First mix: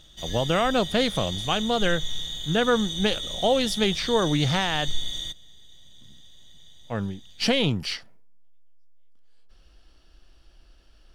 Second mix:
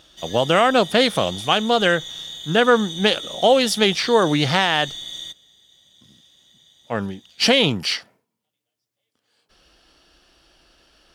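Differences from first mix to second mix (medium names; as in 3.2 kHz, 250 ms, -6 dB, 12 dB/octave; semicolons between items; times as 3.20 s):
speech +8.0 dB; master: add high-pass 300 Hz 6 dB/octave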